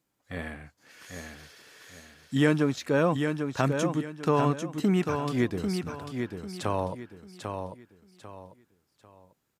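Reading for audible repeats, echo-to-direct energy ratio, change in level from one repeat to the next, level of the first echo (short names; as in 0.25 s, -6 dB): 3, -5.5 dB, -10.0 dB, -6.0 dB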